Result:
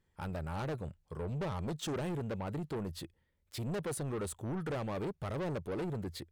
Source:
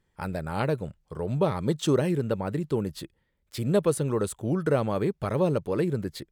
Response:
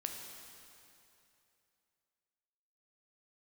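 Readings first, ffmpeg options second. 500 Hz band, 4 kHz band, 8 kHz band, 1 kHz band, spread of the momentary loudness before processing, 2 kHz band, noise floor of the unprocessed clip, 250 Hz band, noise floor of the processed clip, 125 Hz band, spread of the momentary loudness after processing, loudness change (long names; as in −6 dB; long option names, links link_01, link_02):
−12.5 dB, −7.0 dB, −7.0 dB, −9.0 dB, 10 LU, −8.0 dB, −74 dBFS, −11.0 dB, −77 dBFS, −9.5 dB, 6 LU, −11.0 dB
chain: -af "equalizer=frequency=84:width=6:gain=8,asoftclip=type=tanh:threshold=-29dB,volume=-4.5dB"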